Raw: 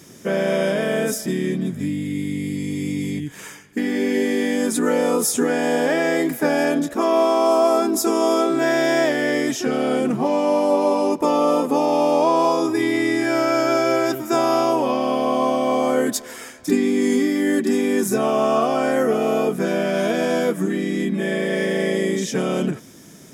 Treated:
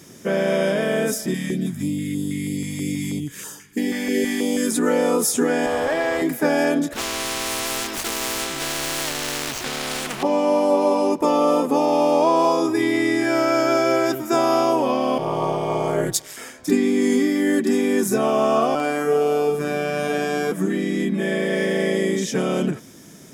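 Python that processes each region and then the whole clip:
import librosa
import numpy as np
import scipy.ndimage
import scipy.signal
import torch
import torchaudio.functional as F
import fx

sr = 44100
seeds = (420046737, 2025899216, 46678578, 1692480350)

y = fx.chain(x, sr, fx.high_shelf(hz=5500.0, db=8.5),
    fx.filter_held_notch(hz=6.2, low_hz=370.0, high_hz=2200.0), at=(1.34, 4.71))
y = fx.chain(y, sr, fx.highpass(hz=440.0, slope=6),
    fx.tube_stage(drive_db=15.0, bias=0.6),
    fx.peak_eq(hz=810.0, db=5.0, octaves=2.0), at=(5.66, 6.22))
y = fx.chain(y, sr, fx.median_filter(points=25),
    fx.spectral_comp(ratio=4.0), at=(6.93, 10.23))
y = fx.chain(y, sr, fx.ring_mod(carrier_hz=100.0),
    fx.band_widen(depth_pct=70), at=(15.18, 16.37))
y = fx.chain(y, sr, fx.robotise(hz=147.0),
    fx.room_flutter(wall_m=8.6, rt60_s=0.64), at=(18.75, 20.52))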